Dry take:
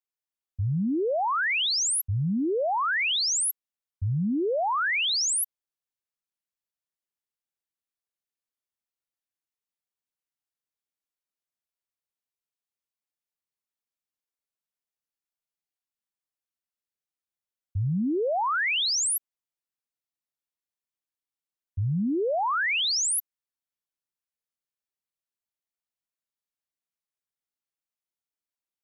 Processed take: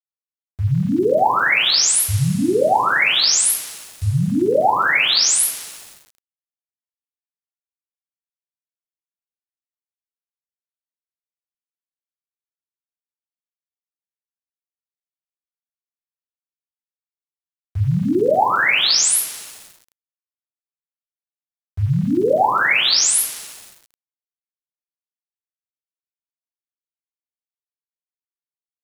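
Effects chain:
coupled-rooms reverb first 0.35 s, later 2.3 s, from −20 dB, DRR −9 dB
centre clipping without the shift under −36 dBFS

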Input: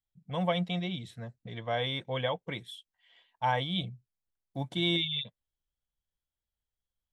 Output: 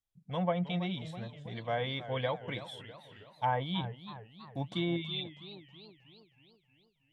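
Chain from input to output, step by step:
treble cut that deepens with the level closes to 1,500 Hz, closed at −24.5 dBFS
feedback echo with a swinging delay time 321 ms, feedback 55%, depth 159 cents, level −13.5 dB
level −1.5 dB

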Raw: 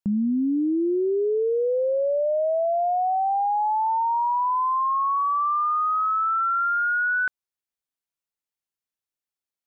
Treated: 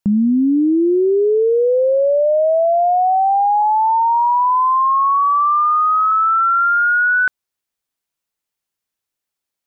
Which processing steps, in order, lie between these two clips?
0:03.62–0:06.12: Chebyshev low-pass filter 1,600 Hz, order 2
level +8.5 dB

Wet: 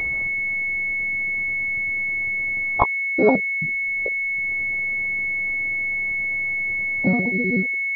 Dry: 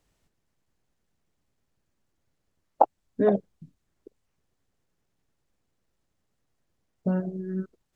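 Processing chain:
pitch shifter gated in a rhythm +4.5 semitones, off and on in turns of 62 ms
upward compression, threshold −22 dBFS
switching amplifier with a slow clock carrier 2,200 Hz
level +5.5 dB

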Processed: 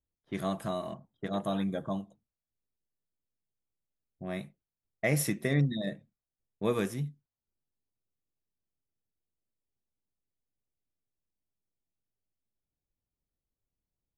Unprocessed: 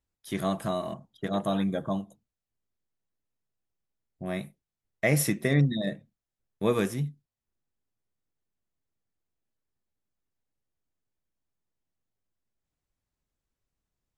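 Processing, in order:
low-pass that shuts in the quiet parts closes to 690 Hz, open at −27 dBFS
level −4 dB

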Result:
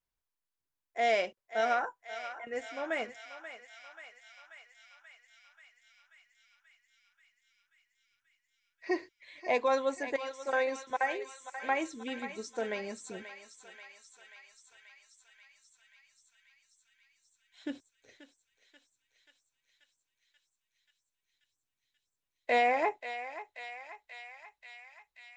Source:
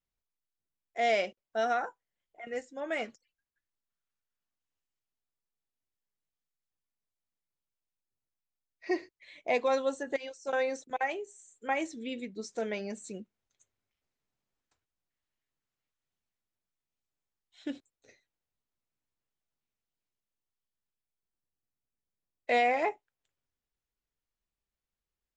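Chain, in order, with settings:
thirty-one-band graphic EQ 200 Hz −5 dB, 1,000 Hz +6 dB, 1,600 Hz +4 dB
on a send: feedback echo with a high-pass in the loop 534 ms, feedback 79%, high-pass 970 Hz, level −9.5 dB
on the sum: level −1 dB

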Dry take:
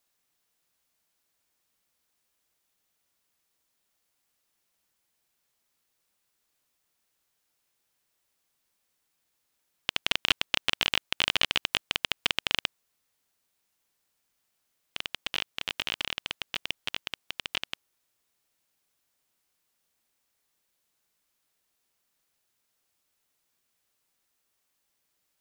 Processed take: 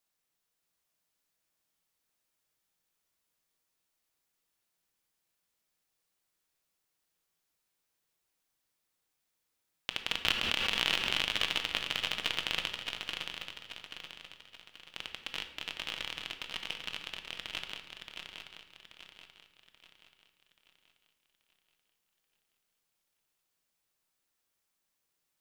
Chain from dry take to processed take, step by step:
feedback echo with a long and a short gap by turns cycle 832 ms, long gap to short 3 to 1, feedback 41%, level −6 dB
convolution reverb RT60 1.0 s, pre-delay 6 ms, DRR 6.5 dB
0:10.25–0:11.21: background raised ahead of every attack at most 20 dB per second
level −7 dB

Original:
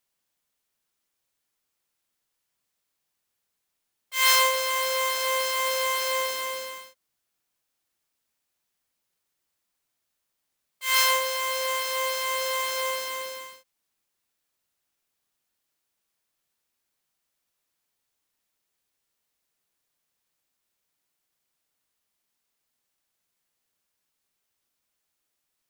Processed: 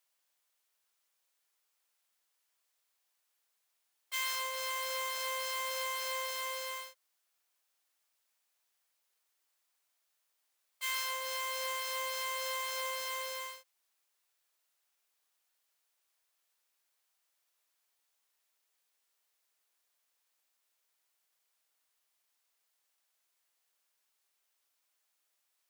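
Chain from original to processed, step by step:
high-pass filter 540 Hz 12 dB per octave
downward compressor 6 to 1, threshold −34 dBFS, peak gain reduction 17.5 dB

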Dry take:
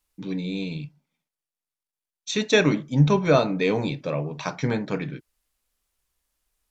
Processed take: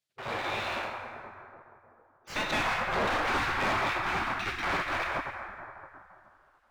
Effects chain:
one scale factor per block 3 bits
mid-hump overdrive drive 21 dB, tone 2,200 Hz, clips at −6 dBFS
high-shelf EQ 2,300 Hz −11 dB
dense smooth reverb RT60 2.9 s, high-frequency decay 0.4×, DRR −0.5 dB
gate on every frequency bin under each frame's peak −15 dB weak
hard clipping −24.5 dBFS, distortion −9 dB
high-shelf EQ 4,700 Hz −9.5 dB

